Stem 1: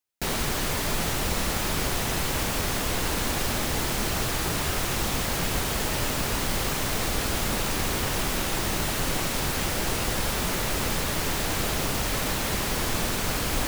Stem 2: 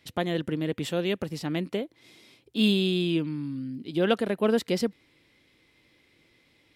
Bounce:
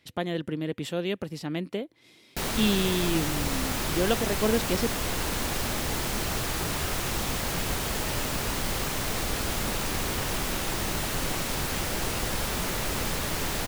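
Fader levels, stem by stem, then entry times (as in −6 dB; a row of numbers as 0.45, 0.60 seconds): −2.5, −2.0 decibels; 2.15, 0.00 seconds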